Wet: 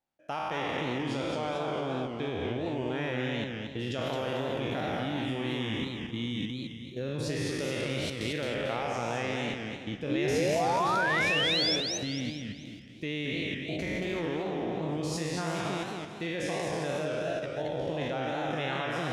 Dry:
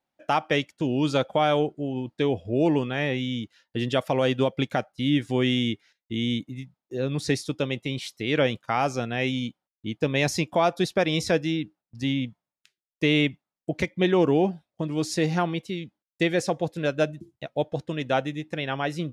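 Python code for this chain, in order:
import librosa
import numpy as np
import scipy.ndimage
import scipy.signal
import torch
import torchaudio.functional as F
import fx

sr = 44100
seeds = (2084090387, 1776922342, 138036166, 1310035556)

y = fx.spec_trails(x, sr, decay_s=2.1)
y = fx.low_shelf(y, sr, hz=74.0, db=7.5)
y = fx.level_steps(y, sr, step_db=14)
y = fx.spec_paint(y, sr, seeds[0], shape='rise', start_s=10.09, length_s=1.67, low_hz=280.0, high_hz=5700.0, level_db=-24.0)
y = fx.echo_warbled(y, sr, ms=221, feedback_pct=37, rate_hz=2.8, cents=197, wet_db=-4.5)
y = y * librosa.db_to_amplitude(-5.5)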